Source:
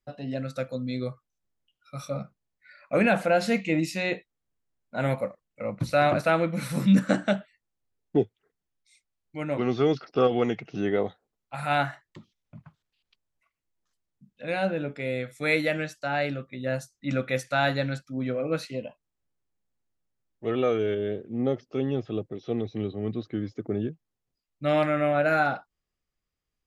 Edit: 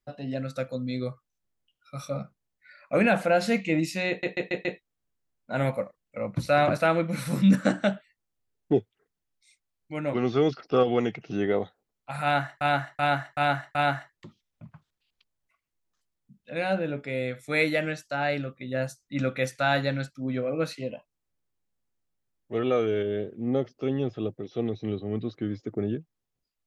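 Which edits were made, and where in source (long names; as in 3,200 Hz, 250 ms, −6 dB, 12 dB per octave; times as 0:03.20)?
0:04.09: stutter 0.14 s, 5 plays
0:11.67–0:12.05: repeat, 5 plays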